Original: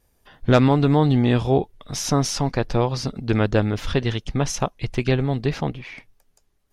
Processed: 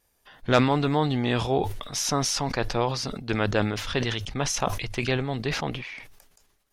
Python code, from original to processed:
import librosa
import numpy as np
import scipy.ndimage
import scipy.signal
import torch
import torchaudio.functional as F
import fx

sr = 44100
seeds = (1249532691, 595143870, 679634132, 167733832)

y = fx.low_shelf(x, sr, hz=500.0, db=-10.0)
y = fx.hum_notches(y, sr, base_hz=50, count=2)
y = fx.sustainer(y, sr, db_per_s=56.0)